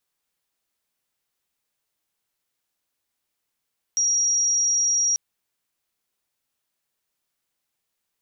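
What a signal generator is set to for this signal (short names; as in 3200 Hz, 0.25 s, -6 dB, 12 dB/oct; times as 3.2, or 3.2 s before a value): tone sine 5690 Hz -18 dBFS 1.19 s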